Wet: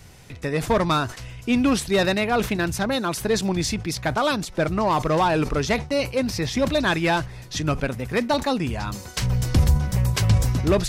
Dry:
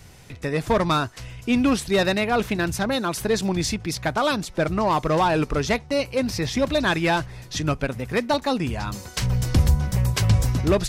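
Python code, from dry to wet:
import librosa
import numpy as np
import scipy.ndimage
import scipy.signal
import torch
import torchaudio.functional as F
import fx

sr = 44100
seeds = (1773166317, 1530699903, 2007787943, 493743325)

y = fx.sustainer(x, sr, db_per_s=140.0)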